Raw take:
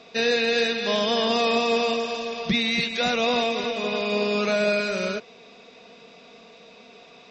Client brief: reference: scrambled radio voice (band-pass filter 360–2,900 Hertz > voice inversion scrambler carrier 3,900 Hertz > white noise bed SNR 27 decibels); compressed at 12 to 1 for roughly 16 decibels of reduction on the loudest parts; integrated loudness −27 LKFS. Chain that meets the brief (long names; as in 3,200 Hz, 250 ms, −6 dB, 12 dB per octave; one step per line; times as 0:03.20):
downward compressor 12 to 1, threshold −35 dBFS
band-pass filter 360–2,900 Hz
voice inversion scrambler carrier 3,900 Hz
white noise bed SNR 27 dB
level +12 dB